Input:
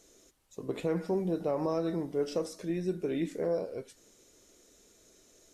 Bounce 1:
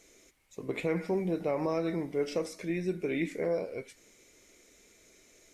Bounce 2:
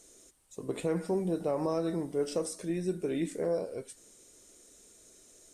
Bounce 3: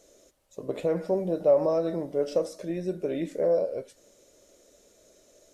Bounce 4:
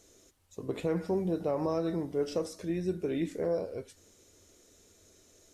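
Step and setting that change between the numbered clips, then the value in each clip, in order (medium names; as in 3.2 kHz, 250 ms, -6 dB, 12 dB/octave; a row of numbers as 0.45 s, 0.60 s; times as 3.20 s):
peaking EQ, frequency: 2.2 kHz, 8.8 kHz, 580 Hz, 88 Hz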